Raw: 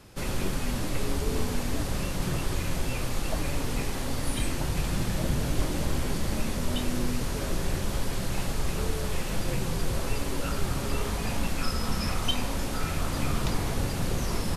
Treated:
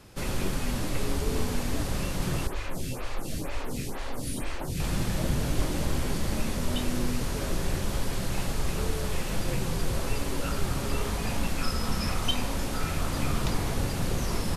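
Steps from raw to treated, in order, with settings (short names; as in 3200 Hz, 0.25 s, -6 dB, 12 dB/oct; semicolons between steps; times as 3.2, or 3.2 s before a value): 2.47–4.8 photocell phaser 2.1 Hz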